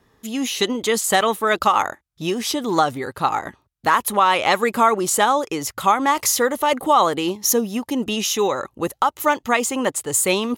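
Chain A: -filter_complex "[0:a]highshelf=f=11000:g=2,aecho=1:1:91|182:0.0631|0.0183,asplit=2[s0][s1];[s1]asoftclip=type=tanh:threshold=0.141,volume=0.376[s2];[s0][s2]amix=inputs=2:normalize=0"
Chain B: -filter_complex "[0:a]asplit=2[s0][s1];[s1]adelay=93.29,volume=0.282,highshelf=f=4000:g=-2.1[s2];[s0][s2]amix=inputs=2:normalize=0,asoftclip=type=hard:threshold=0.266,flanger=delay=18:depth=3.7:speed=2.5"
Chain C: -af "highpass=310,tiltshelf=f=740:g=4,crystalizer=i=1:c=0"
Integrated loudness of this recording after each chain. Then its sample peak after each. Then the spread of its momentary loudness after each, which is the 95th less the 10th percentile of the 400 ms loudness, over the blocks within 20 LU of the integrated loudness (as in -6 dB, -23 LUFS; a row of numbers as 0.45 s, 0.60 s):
-18.0 LUFS, -23.5 LUFS, -20.0 LUFS; -3.5 dBFS, -11.5 dBFS, -2.5 dBFS; 8 LU, 7 LU, 9 LU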